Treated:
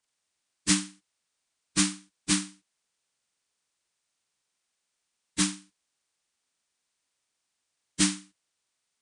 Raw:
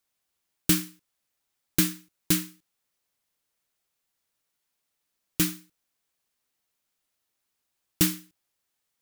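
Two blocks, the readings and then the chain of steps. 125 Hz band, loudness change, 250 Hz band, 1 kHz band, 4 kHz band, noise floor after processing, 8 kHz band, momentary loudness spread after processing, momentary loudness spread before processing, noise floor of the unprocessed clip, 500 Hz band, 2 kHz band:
−4.0 dB, −1.5 dB, −0.5 dB, +3.5 dB, +2.0 dB, −82 dBFS, +2.5 dB, 18 LU, 18 LU, −81 dBFS, −6.0 dB, +1.5 dB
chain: partials spread apart or drawn together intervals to 82%

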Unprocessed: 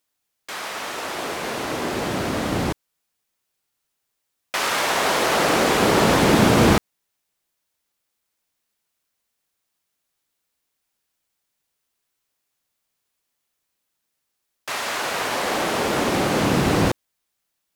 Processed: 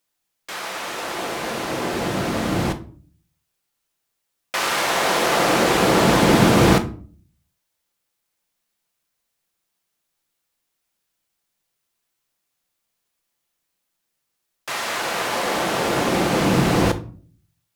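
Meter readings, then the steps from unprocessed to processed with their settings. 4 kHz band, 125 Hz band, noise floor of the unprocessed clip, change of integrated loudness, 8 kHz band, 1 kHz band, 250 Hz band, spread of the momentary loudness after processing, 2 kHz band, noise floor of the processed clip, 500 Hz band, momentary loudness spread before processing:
+0.5 dB, +2.0 dB, −78 dBFS, +1.0 dB, +0.5 dB, +1.0 dB, +1.5 dB, 14 LU, +0.5 dB, −77 dBFS, +1.0 dB, 13 LU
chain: rectangular room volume 350 cubic metres, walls furnished, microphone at 0.78 metres

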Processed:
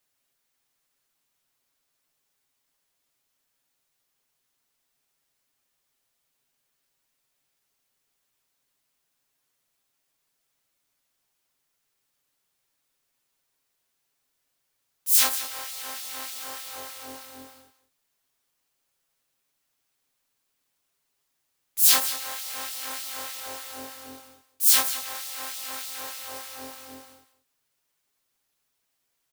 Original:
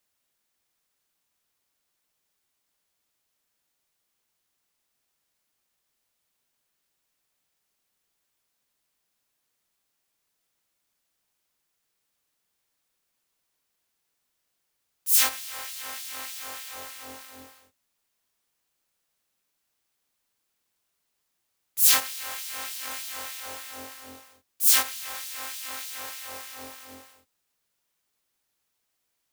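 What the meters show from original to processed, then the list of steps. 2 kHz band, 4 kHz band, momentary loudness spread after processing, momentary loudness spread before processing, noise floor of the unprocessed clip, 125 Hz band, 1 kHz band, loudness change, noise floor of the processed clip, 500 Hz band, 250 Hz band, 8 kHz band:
−1.0 dB, +1.5 dB, 22 LU, 22 LU, −78 dBFS, can't be measured, +1.5 dB, +1.0 dB, −77 dBFS, +2.5 dB, +3.5 dB, +1.0 dB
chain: comb filter 7.4 ms, depth 49%
on a send: single-tap delay 184 ms −12.5 dB

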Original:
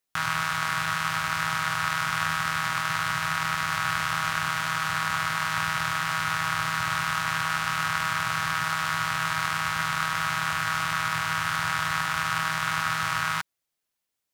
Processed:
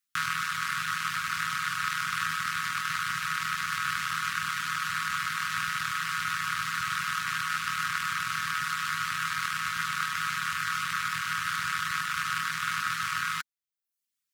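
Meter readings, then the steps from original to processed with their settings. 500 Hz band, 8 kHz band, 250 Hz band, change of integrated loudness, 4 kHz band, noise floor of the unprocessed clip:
below −35 dB, −2.5 dB, −9.5 dB, −3.5 dB, −3.0 dB, −83 dBFS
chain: reverb reduction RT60 0.66 s
elliptic band-stop filter 260–1,200 Hz, stop band 80 dB
low-shelf EQ 210 Hz −10 dB

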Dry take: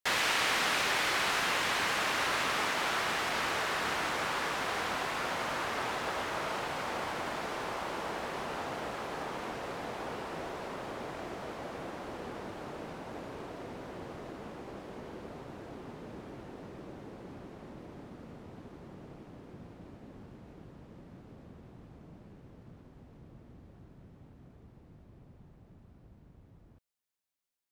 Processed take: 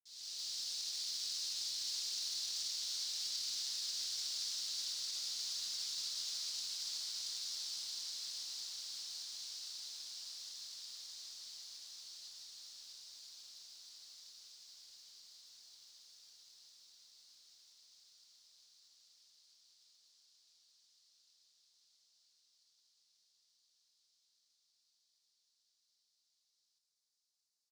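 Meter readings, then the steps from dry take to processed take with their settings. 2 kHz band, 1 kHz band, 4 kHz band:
−28.0 dB, −35.5 dB, −1.5 dB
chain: fade in at the beginning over 1.94 s
four-pole ladder band-pass 5,100 Hz, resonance 45%
brickwall limiter −47 dBFS, peak gain reduction 11 dB
high shelf with overshoot 3,500 Hz +13 dB, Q 1.5
floating-point word with a short mantissa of 2 bits
on a send: repeating echo 657 ms, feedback 52%, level −9 dB
on the sum: feedback echo at a low word length 155 ms, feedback 80%, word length 11 bits, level −11.5 dB
level +2 dB

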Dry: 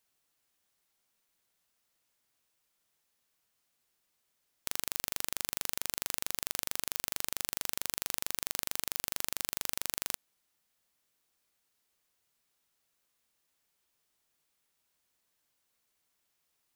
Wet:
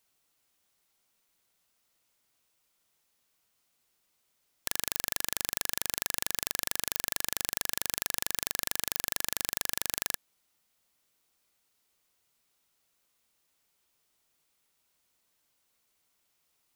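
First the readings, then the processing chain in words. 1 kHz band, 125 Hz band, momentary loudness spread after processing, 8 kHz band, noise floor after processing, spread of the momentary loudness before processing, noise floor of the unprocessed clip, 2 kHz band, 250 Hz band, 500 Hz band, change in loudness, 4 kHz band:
+3.5 dB, +3.5 dB, 1 LU, +3.5 dB, −75 dBFS, 1 LU, −79 dBFS, +3.0 dB, +3.5 dB, +3.5 dB, +3.5 dB, +3.5 dB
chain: notch filter 1,700 Hz, Q 17
level +3.5 dB

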